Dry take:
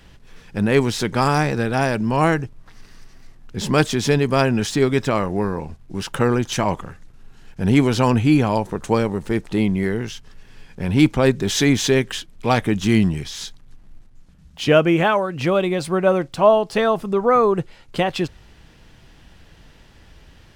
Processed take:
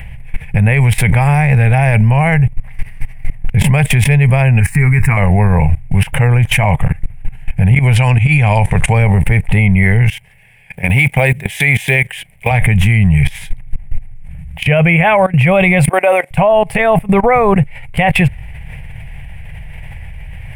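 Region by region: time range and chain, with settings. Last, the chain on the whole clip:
4.60–5.17 s: static phaser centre 1.4 kHz, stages 4 + doubling 12 ms -11 dB
7.96–8.93 s: low-pass 7.3 kHz + treble shelf 2.5 kHz +12 dB
10.10–12.51 s: block-companded coder 7-bit + high-pass 490 Hz 6 dB/octave + peaking EQ 1.2 kHz -6.5 dB 0.9 oct
15.89–16.31 s: high-pass 360 Hz 24 dB/octave + treble shelf 7.6 kHz +11 dB + tape noise reduction on one side only decoder only
whole clip: FFT filter 140 Hz 0 dB, 310 Hz -29 dB, 460 Hz -16 dB, 780 Hz -7 dB, 1.3 kHz -21 dB, 2.2 kHz +2 dB, 4.1 kHz -28 dB, 6.5 kHz -28 dB, 9.2 kHz -7 dB, 14 kHz -10 dB; level held to a coarse grid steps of 19 dB; loudness maximiser +30.5 dB; trim -1 dB

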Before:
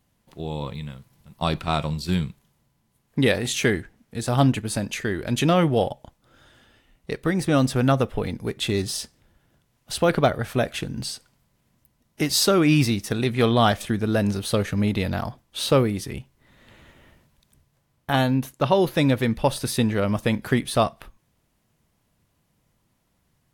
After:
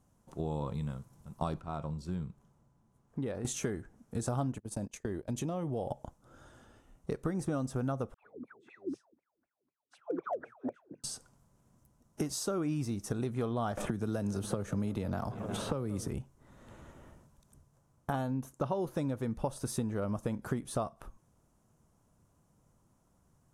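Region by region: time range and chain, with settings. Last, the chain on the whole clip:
1.60–3.45 s: low-pass 3.1 kHz 6 dB/octave + compression 1.5:1, threshold -53 dBFS
4.58–5.89 s: gate -29 dBFS, range -26 dB + peaking EQ 1.4 kHz -8.5 dB 0.41 oct + compression 2.5:1, threshold -32 dBFS
8.14–11.04 s: wah-wah 4 Hz 260–2500 Hz, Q 16 + phase dispersion lows, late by 95 ms, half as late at 830 Hz + hard clipper -24.5 dBFS
13.77–16.08 s: bucket-brigade echo 179 ms, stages 4096, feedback 82%, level -23.5 dB + three bands compressed up and down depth 100%
whole clip: compression 6:1, threshold -31 dBFS; low-pass 9.8 kHz 12 dB/octave; high-order bell 2.9 kHz -12 dB

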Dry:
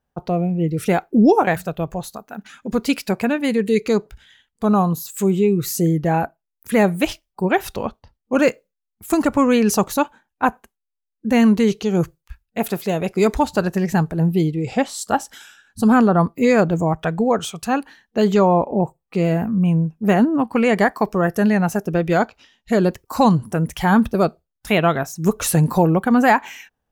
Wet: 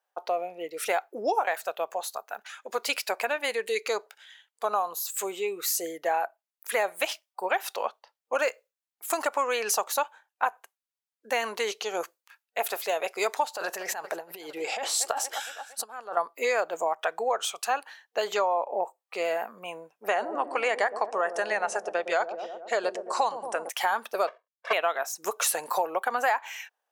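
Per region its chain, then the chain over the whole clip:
13.56–16.17 s: feedback delay 231 ms, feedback 57%, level -21.5 dB + compressor with a negative ratio -21 dBFS, ratio -0.5
20.08–23.69 s: steep low-pass 10 kHz 72 dB/octave + feedback echo behind a low-pass 114 ms, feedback 66%, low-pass 470 Hz, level -6 dB
24.27–24.73 s: square wave that keeps the level + low-pass 1.8 kHz + comb 1.8 ms, depth 96%
whole clip: high-pass 570 Hz 24 dB/octave; compression 4:1, threshold -23 dBFS

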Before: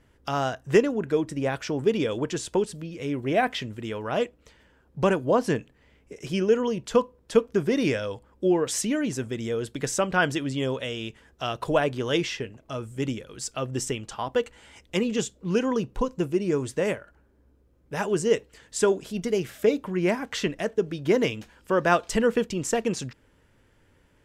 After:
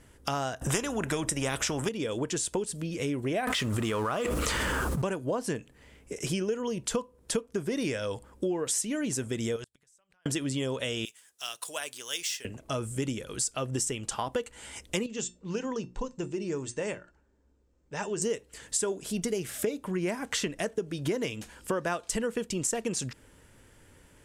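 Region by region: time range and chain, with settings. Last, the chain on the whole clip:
0.61–1.89 s: bass shelf 440 Hz +9 dB + band-stop 4.4 kHz, Q 6.1 + spectrum-flattening compressor 2:1
3.47–5.02 s: companding laws mixed up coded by mu + peaking EQ 1.2 kHz +10 dB 0.44 oct + level flattener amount 100%
9.56–10.26 s: peaking EQ 280 Hz -14 dB 2.1 oct + compression 4:1, threshold -36 dBFS + inverted gate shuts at -31 dBFS, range -37 dB
11.05–12.45 s: median filter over 3 samples + differentiator
15.06–18.22 s: steep low-pass 8.1 kHz 72 dB/octave + hum notches 60/120/180/240/300/360 Hz + feedback comb 900 Hz, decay 0.18 s, mix 70%
whole clip: peaking EQ 9.3 kHz +12 dB 1.1 oct; compression 6:1, threshold -32 dBFS; trim +4 dB

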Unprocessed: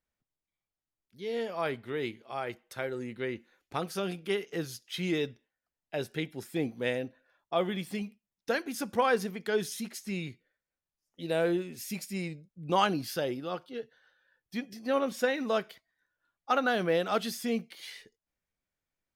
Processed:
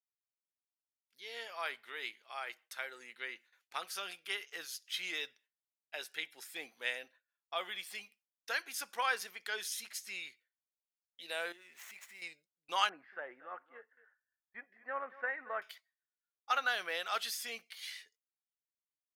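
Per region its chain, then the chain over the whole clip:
11.52–12.22 s: median filter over 9 samples + peaking EQ 2 kHz +8.5 dB 0.21 oct + compression 2.5:1, threshold -44 dBFS
12.89–15.62 s: Chebyshev low-pass 1.9 kHz, order 4 + delay 231 ms -17.5 dB
whole clip: high-pass 1.3 kHz 12 dB/octave; gate with hold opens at -58 dBFS

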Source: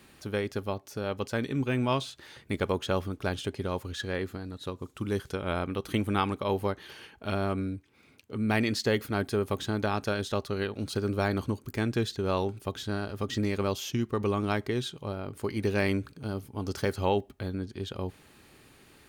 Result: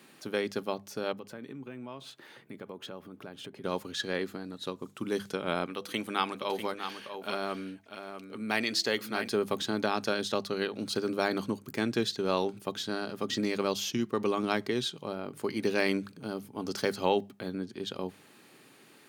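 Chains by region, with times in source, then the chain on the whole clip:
1.12–3.64 s: peaking EQ 6.2 kHz -8.5 dB 2 oct + compression 5:1, threshold -39 dBFS + high-pass 53 Hz
5.66–9.28 s: bass shelf 470 Hz -8.5 dB + de-hum 166.1 Hz, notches 4 + delay 646 ms -8.5 dB
whole clip: dynamic bell 4.6 kHz, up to +5 dB, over -50 dBFS, Q 1.2; high-pass 150 Hz 24 dB/octave; hum notches 50/100/150/200 Hz

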